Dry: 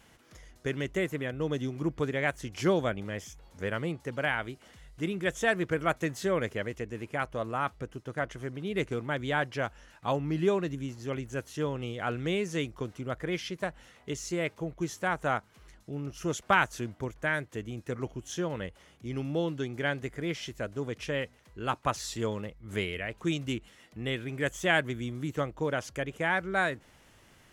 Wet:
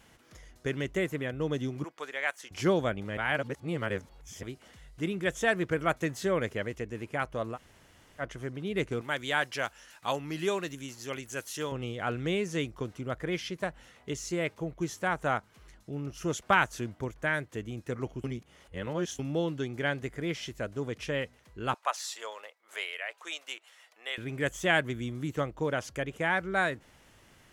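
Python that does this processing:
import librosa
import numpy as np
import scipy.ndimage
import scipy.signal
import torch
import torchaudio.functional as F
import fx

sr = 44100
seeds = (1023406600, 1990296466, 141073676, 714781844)

y = fx.highpass(x, sr, hz=800.0, slope=12, at=(1.84, 2.51))
y = fx.tilt_eq(y, sr, slope=3.0, at=(9.01, 11.72))
y = fx.highpass(y, sr, hz=630.0, slope=24, at=(21.74, 24.18))
y = fx.edit(y, sr, fx.reverse_span(start_s=3.17, length_s=1.26),
    fx.room_tone_fill(start_s=7.55, length_s=0.66, crossfade_s=0.06),
    fx.reverse_span(start_s=18.24, length_s=0.95), tone=tone)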